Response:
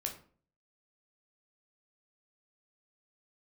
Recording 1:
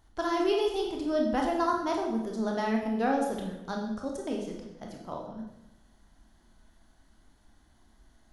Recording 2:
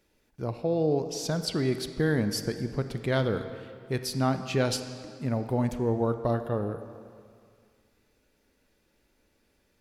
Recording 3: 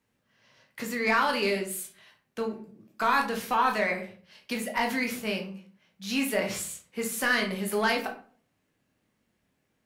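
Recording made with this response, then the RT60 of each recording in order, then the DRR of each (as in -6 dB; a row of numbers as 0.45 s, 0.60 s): 3; 0.90 s, 2.2 s, 0.45 s; 0.0 dB, 9.0 dB, 1.5 dB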